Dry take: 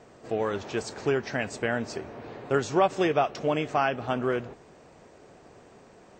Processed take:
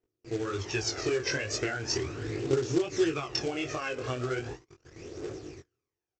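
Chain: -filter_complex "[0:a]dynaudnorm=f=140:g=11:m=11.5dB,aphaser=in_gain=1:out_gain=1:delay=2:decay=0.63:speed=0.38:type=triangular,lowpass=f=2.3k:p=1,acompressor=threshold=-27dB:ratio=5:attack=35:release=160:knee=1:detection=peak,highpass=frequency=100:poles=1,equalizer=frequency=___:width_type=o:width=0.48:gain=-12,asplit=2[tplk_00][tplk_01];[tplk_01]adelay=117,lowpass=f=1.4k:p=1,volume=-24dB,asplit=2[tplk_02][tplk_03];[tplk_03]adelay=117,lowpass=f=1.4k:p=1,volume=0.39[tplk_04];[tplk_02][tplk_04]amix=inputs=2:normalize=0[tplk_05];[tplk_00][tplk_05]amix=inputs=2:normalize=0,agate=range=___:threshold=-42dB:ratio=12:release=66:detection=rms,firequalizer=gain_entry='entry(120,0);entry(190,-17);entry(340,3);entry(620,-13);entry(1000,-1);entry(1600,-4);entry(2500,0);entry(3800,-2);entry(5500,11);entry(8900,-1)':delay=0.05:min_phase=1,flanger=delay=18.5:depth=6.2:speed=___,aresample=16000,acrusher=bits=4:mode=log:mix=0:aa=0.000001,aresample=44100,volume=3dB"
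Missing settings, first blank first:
980, -34dB, 1.3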